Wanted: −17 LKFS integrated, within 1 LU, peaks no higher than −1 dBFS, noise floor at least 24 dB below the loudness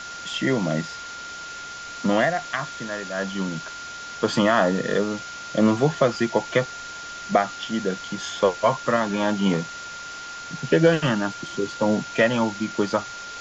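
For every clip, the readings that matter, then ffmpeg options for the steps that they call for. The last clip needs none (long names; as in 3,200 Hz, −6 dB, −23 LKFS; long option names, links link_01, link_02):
interfering tone 1,400 Hz; level of the tone −35 dBFS; background noise floor −37 dBFS; target noise floor −48 dBFS; integrated loudness −23.5 LKFS; sample peak −5.0 dBFS; target loudness −17.0 LKFS
→ -af "bandreject=frequency=1400:width=30"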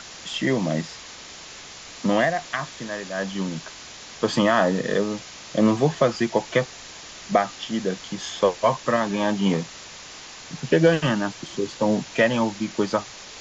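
interfering tone none found; background noise floor −41 dBFS; target noise floor −48 dBFS
→ -af "afftdn=noise_reduction=7:noise_floor=-41"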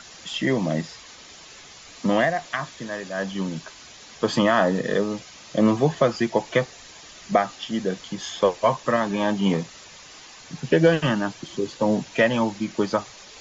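background noise floor −45 dBFS; target noise floor −48 dBFS
→ -af "afftdn=noise_reduction=6:noise_floor=-45"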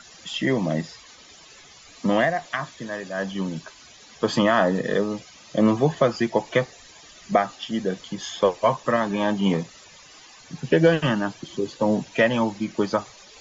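background noise floor −49 dBFS; integrated loudness −23.5 LKFS; sample peak −5.0 dBFS; target loudness −17.0 LKFS
→ -af "volume=6.5dB,alimiter=limit=-1dB:level=0:latency=1"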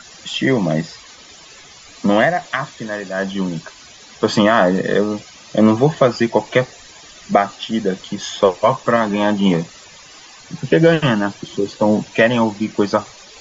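integrated loudness −17.5 LKFS; sample peak −1.0 dBFS; background noise floor −42 dBFS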